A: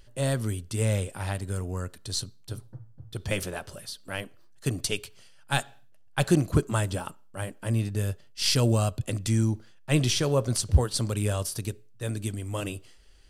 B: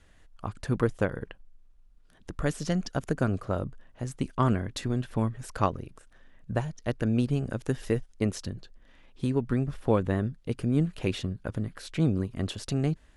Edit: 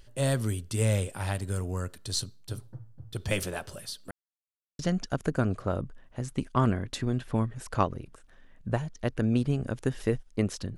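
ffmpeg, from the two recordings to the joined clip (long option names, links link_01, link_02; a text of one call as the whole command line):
ffmpeg -i cue0.wav -i cue1.wav -filter_complex "[0:a]apad=whole_dur=10.77,atrim=end=10.77,asplit=2[link_01][link_02];[link_01]atrim=end=4.11,asetpts=PTS-STARTPTS,afade=type=out:start_time=4.106:duration=0.004:curve=hsin[link_03];[link_02]atrim=start=4.11:end=4.79,asetpts=PTS-STARTPTS,volume=0[link_04];[1:a]atrim=start=2.62:end=8.6,asetpts=PTS-STARTPTS,afade=type=in:duration=0.004:curve=hsin[link_05];[link_03][link_04][link_05]concat=n=3:v=0:a=1" out.wav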